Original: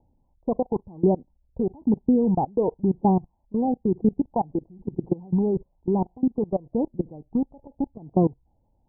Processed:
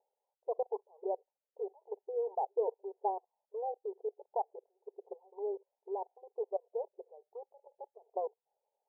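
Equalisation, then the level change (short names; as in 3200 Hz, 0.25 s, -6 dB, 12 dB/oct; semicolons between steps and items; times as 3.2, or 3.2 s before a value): brick-wall FIR high-pass 390 Hz; LPF 1000 Hz 24 dB/oct; -8.0 dB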